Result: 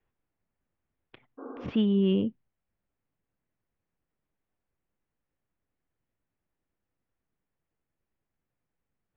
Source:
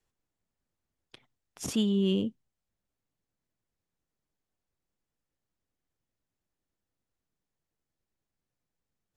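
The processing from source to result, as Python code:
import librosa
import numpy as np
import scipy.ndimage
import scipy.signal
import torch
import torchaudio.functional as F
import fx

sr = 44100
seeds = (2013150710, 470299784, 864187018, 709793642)

y = fx.spec_repair(x, sr, seeds[0], start_s=1.41, length_s=0.24, low_hz=240.0, high_hz=1600.0, source='after')
y = scipy.signal.sosfilt(scipy.signal.cheby2(4, 60, 8200.0, 'lowpass', fs=sr, output='sos'), y)
y = y * 10.0 ** (2.5 / 20.0)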